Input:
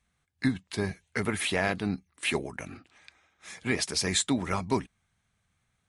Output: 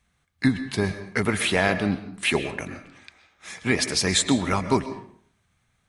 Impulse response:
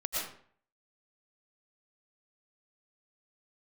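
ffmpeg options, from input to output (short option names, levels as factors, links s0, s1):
-filter_complex "[0:a]asplit=2[s0][s1];[1:a]atrim=start_sample=2205,asetrate=40131,aresample=44100,lowpass=7100[s2];[s1][s2]afir=irnorm=-1:irlink=0,volume=0.2[s3];[s0][s3]amix=inputs=2:normalize=0,volume=1.68"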